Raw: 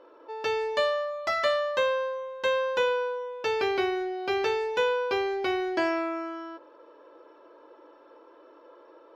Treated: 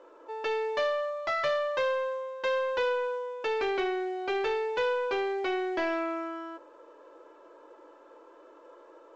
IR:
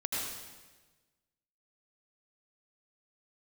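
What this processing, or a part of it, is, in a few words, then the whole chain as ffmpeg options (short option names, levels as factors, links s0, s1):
telephone: -af "highpass=250,lowpass=3500,asoftclip=type=tanh:threshold=0.075" -ar 16000 -c:a pcm_mulaw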